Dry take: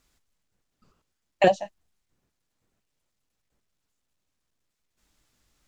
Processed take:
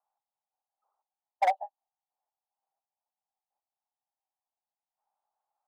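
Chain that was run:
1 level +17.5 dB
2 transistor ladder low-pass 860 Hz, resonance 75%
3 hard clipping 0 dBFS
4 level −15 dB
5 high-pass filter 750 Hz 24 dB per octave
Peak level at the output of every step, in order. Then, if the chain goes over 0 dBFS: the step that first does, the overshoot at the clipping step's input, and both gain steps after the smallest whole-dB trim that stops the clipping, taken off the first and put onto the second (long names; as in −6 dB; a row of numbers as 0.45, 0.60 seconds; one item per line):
+12.5, +7.0, 0.0, −15.0, −15.0 dBFS
step 1, 7.0 dB
step 1 +10.5 dB, step 4 −8 dB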